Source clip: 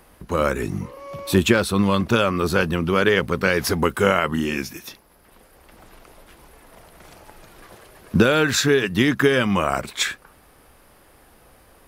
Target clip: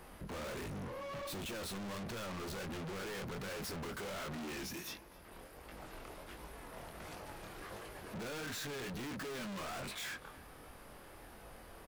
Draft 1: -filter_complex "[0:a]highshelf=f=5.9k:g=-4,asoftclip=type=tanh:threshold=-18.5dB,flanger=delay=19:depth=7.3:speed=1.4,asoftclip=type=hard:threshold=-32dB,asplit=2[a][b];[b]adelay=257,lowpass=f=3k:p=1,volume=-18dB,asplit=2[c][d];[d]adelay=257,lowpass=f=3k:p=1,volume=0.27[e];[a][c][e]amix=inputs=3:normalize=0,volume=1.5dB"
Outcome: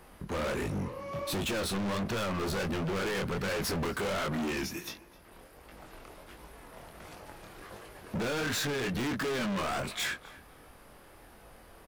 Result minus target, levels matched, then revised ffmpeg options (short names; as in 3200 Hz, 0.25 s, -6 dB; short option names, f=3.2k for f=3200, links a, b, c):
hard clip: distortion -4 dB
-filter_complex "[0:a]highshelf=f=5.9k:g=-4,asoftclip=type=tanh:threshold=-18.5dB,flanger=delay=19:depth=7.3:speed=1.4,asoftclip=type=hard:threshold=-43.5dB,asplit=2[a][b];[b]adelay=257,lowpass=f=3k:p=1,volume=-18dB,asplit=2[c][d];[d]adelay=257,lowpass=f=3k:p=1,volume=0.27[e];[a][c][e]amix=inputs=3:normalize=0,volume=1.5dB"